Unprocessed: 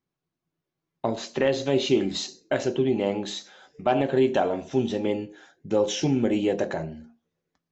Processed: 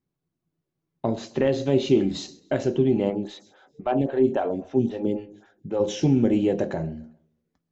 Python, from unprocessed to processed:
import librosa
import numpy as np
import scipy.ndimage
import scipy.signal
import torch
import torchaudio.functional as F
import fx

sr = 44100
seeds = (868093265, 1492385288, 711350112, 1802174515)

y = fx.low_shelf(x, sr, hz=500.0, db=11.0)
y = fx.echo_feedback(y, sr, ms=134, feedback_pct=42, wet_db=-24)
y = fx.stagger_phaser(y, sr, hz=3.7, at=(3.09, 5.79), fade=0.02)
y = y * 10.0 ** (-5.0 / 20.0)